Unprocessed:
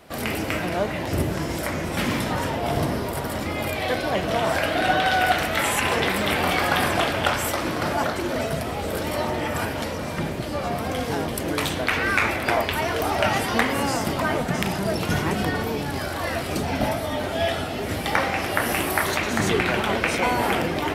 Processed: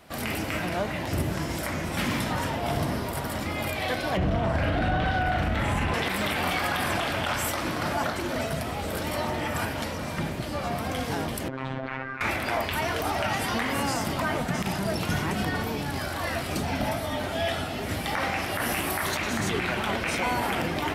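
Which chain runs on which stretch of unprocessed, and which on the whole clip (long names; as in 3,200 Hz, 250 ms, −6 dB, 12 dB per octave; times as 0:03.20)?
0:04.17–0:05.94: RIAA equalisation playback + double-tracking delay 42 ms −5 dB
0:11.48–0:12.21: low-pass filter 1,600 Hz + compressor whose output falls as the input rises −27 dBFS, ratio −0.5 + phases set to zero 132 Hz
whole clip: parametric band 440 Hz −4.5 dB 0.93 octaves; brickwall limiter −15 dBFS; level −2 dB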